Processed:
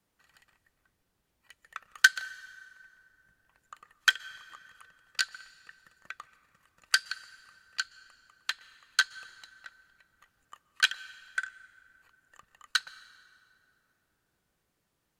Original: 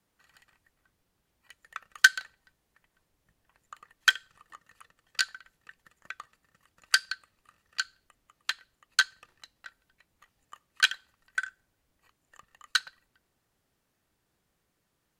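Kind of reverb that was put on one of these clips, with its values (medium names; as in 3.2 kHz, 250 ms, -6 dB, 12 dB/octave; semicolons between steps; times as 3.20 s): plate-style reverb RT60 2.7 s, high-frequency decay 0.6×, pre-delay 110 ms, DRR 19 dB; trim -1.5 dB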